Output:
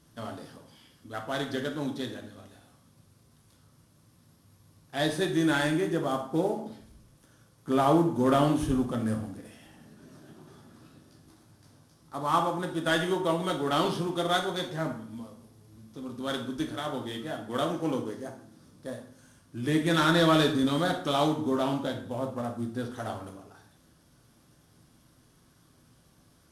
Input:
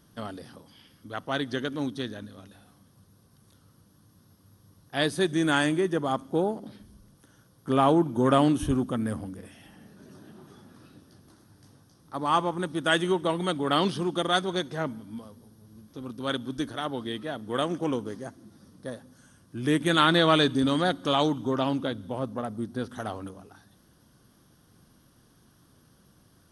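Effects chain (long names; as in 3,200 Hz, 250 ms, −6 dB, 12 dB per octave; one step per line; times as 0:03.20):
variable-slope delta modulation 64 kbit/s
dense smooth reverb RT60 0.57 s, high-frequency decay 0.75×, DRR 2 dB
level −3.5 dB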